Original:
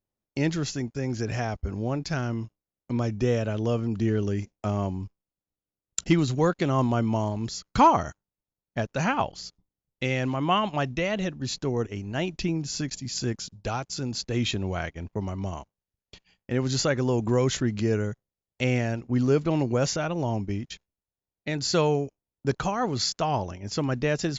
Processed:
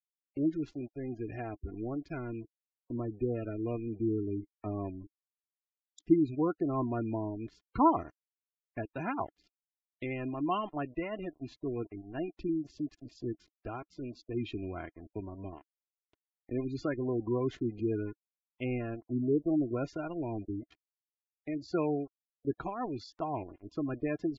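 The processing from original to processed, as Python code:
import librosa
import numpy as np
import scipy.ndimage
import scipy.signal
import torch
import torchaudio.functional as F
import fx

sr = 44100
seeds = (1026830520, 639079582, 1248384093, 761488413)

y = fx.rattle_buzz(x, sr, strikes_db=-27.0, level_db=-28.0)
y = np.sign(y) * np.maximum(np.abs(y) - 10.0 ** (-37.0 / 20.0), 0.0)
y = fx.peak_eq(y, sr, hz=310.0, db=8.0, octaves=0.41)
y = y + 0.35 * np.pad(y, (int(2.9 * sr / 1000.0), 0))[:len(y)]
y = fx.spec_gate(y, sr, threshold_db=-20, keep='strong')
y = scipy.signal.sosfilt(scipy.signal.butter(2, 2300.0, 'lowpass', fs=sr, output='sos'), y)
y = F.gain(torch.from_numpy(y), -8.5).numpy()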